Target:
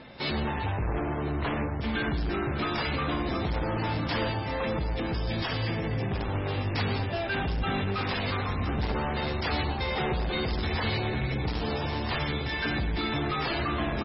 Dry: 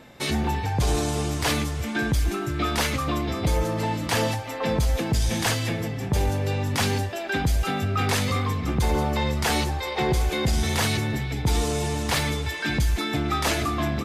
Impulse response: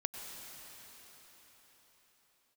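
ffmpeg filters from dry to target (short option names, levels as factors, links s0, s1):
-filter_complex "[0:a]asettb=1/sr,asplit=3[s0][s1][s2];[s0]atrim=end=0.734[s3];[s1]atrim=start=0.73:end=1.81,asetpts=PTS-STARTPTS,afade=t=in:d=0.004:c=qsin,afade=t=out:st=1.076:d=0.004:c=qsin,lowpass=1600[s4];[s2]atrim=start=1.806[s5];[s3][s4]acrossfade=d=0.004:c1=hsin:c2=qsin[s6];[s6][s5]acrossfade=d=0.004:c1=qsin:c2=hsin,asplit=3[s7][s8][s9];[s7]afade=t=out:st=4.29:d=0.02[s10];[s8]acompressor=threshold=0.0447:ratio=2.5,afade=t=in:st=4.29:d=0.02,afade=t=out:st=5.85:d=0.02[s11];[s9]afade=t=in:st=5.85:d=0.02[s12];[s10][s11][s12]amix=inputs=3:normalize=0,asoftclip=type=hard:threshold=0.0376,asplit=2[s13][s14];[s14]adelay=1010,lowpass=f=950:p=1,volume=0.376,asplit=2[s15][s16];[s16]adelay=1010,lowpass=f=950:p=1,volume=0.52,asplit=2[s17][s18];[s18]adelay=1010,lowpass=f=950:p=1,volume=0.52,asplit=2[s19][s20];[s20]adelay=1010,lowpass=f=950:p=1,volume=0.52,asplit=2[s21][s22];[s22]adelay=1010,lowpass=f=950:p=1,volume=0.52,asplit=2[s23][s24];[s24]adelay=1010,lowpass=f=950:p=1,volume=0.52[s25];[s13][s15][s17][s19][s21][s23][s25]amix=inputs=7:normalize=0[s26];[1:a]atrim=start_sample=2205,atrim=end_sample=6174[s27];[s26][s27]afir=irnorm=-1:irlink=0,volume=1.33" -ar 22050 -c:a libmp3lame -b:a 16k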